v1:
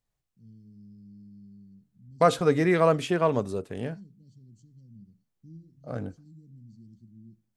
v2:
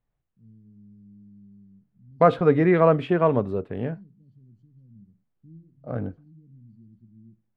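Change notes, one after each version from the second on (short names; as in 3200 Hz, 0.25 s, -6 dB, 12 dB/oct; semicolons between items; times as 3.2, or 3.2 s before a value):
second voice +5.0 dB; master: add air absorption 480 m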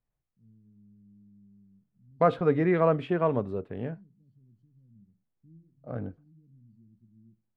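first voice -7.0 dB; second voice -5.5 dB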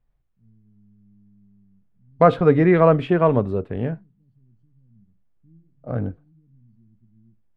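second voice +8.0 dB; master: add low shelf 67 Hz +11.5 dB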